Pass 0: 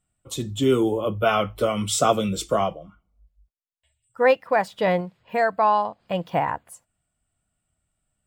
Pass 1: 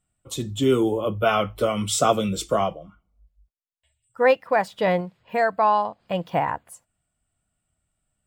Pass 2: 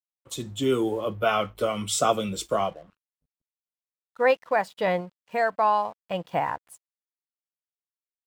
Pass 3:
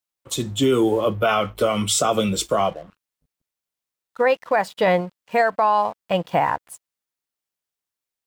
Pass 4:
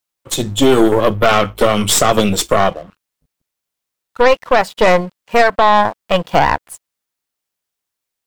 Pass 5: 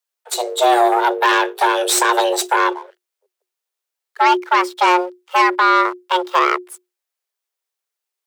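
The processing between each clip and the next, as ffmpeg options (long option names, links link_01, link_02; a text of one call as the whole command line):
ffmpeg -i in.wav -af anull out.wav
ffmpeg -i in.wav -af "aeval=exprs='sgn(val(0))*max(abs(val(0))-0.00266,0)':channel_layout=same,lowshelf=frequency=290:gain=-5,volume=-2dB" out.wav
ffmpeg -i in.wav -af "alimiter=limit=-18dB:level=0:latency=1:release=78,volume=8.5dB" out.wav
ffmpeg -i in.wav -af "aeval=exprs='0.355*(cos(1*acos(clip(val(0)/0.355,-1,1)))-cos(1*PI/2))+0.0708*(cos(4*acos(clip(val(0)/0.355,-1,1)))-cos(4*PI/2))':channel_layout=same,volume=6.5dB" out.wav
ffmpeg -i in.wav -af "afreqshift=360,volume=-3dB" out.wav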